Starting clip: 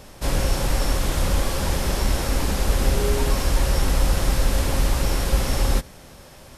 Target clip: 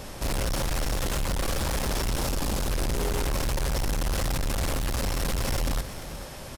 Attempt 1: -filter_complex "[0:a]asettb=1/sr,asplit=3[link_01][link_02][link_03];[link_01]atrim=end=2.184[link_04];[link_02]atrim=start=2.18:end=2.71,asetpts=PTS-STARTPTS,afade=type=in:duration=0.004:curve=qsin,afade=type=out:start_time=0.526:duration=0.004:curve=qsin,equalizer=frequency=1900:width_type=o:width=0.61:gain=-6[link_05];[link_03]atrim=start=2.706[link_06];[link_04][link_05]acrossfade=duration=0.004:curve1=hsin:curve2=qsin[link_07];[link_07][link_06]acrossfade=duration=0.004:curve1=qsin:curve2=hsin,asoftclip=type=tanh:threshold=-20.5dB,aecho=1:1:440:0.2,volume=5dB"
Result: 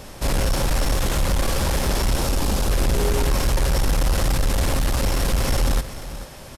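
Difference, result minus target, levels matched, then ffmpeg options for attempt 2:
soft clipping: distortion −5 dB
-filter_complex "[0:a]asettb=1/sr,asplit=3[link_01][link_02][link_03];[link_01]atrim=end=2.184[link_04];[link_02]atrim=start=2.18:end=2.71,asetpts=PTS-STARTPTS,afade=type=in:duration=0.004:curve=qsin,afade=type=out:start_time=0.526:duration=0.004:curve=qsin,equalizer=frequency=1900:width_type=o:width=0.61:gain=-6[link_05];[link_03]atrim=start=2.706[link_06];[link_04][link_05]acrossfade=duration=0.004:curve1=hsin:curve2=qsin[link_07];[link_07][link_06]acrossfade=duration=0.004:curve1=qsin:curve2=hsin,asoftclip=type=tanh:threshold=-30dB,aecho=1:1:440:0.2,volume=5dB"

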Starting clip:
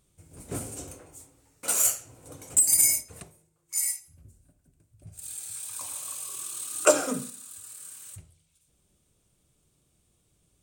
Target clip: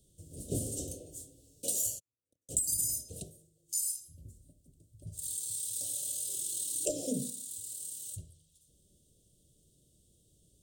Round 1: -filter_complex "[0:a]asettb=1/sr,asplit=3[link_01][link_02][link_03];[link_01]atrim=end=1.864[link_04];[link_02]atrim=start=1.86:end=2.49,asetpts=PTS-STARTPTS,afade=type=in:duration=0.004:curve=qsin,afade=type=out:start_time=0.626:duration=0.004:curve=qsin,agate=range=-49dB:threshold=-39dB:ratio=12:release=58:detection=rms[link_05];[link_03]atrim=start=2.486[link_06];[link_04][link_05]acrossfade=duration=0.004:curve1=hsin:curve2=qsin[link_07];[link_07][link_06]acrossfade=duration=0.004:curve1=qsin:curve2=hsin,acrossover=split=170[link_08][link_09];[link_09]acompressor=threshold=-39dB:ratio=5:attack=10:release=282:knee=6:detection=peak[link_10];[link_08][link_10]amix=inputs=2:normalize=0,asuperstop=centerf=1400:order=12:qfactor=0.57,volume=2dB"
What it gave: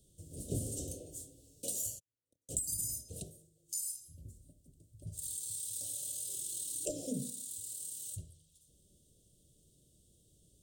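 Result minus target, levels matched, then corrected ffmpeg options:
downward compressor: peak gain reduction +5.5 dB
-filter_complex "[0:a]asettb=1/sr,asplit=3[link_01][link_02][link_03];[link_01]atrim=end=1.864[link_04];[link_02]atrim=start=1.86:end=2.49,asetpts=PTS-STARTPTS,afade=type=in:duration=0.004:curve=qsin,afade=type=out:start_time=0.626:duration=0.004:curve=qsin,agate=range=-49dB:threshold=-39dB:ratio=12:release=58:detection=rms[link_05];[link_03]atrim=start=2.486[link_06];[link_04][link_05]acrossfade=duration=0.004:curve1=hsin:curve2=qsin[link_07];[link_07][link_06]acrossfade=duration=0.004:curve1=qsin:curve2=hsin,acrossover=split=170[link_08][link_09];[link_09]acompressor=threshold=-32dB:ratio=5:attack=10:release=282:knee=6:detection=peak[link_10];[link_08][link_10]amix=inputs=2:normalize=0,asuperstop=centerf=1400:order=12:qfactor=0.57,volume=2dB"

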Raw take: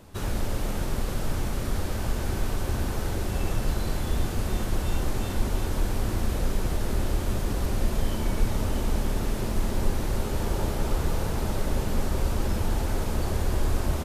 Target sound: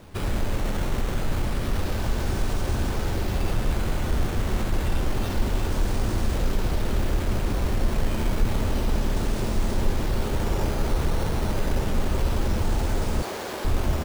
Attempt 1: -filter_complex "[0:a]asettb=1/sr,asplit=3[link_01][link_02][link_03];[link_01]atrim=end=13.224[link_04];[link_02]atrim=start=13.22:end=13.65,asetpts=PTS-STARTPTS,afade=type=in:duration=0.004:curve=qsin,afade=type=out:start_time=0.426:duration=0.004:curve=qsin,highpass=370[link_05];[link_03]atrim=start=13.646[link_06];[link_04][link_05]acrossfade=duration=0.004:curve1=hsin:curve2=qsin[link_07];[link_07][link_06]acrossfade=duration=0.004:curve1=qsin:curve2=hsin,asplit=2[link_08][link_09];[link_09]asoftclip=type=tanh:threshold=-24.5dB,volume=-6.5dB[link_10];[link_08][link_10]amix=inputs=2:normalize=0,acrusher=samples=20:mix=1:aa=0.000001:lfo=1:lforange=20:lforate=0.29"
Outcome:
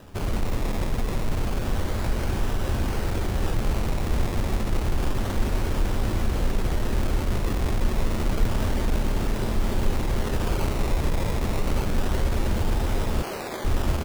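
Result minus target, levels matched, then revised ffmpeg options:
sample-and-hold swept by an LFO: distortion +5 dB
-filter_complex "[0:a]asettb=1/sr,asplit=3[link_01][link_02][link_03];[link_01]atrim=end=13.224[link_04];[link_02]atrim=start=13.22:end=13.65,asetpts=PTS-STARTPTS,afade=type=in:duration=0.004:curve=qsin,afade=type=out:start_time=0.426:duration=0.004:curve=qsin,highpass=370[link_05];[link_03]atrim=start=13.646[link_06];[link_04][link_05]acrossfade=duration=0.004:curve1=hsin:curve2=qsin[link_07];[link_07][link_06]acrossfade=duration=0.004:curve1=qsin:curve2=hsin,asplit=2[link_08][link_09];[link_09]asoftclip=type=tanh:threshold=-24.5dB,volume=-6.5dB[link_10];[link_08][link_10]amix=inputs=2:normalize=0,acrusher=samples=6:mix=1:aa=0.000001:lfo=1:lforange=6:lforate=0.29"

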